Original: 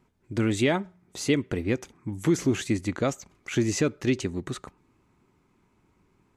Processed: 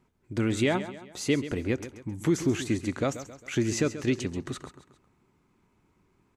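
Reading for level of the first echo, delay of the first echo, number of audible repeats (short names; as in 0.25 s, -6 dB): -13.0 dB, 0.134 s, 3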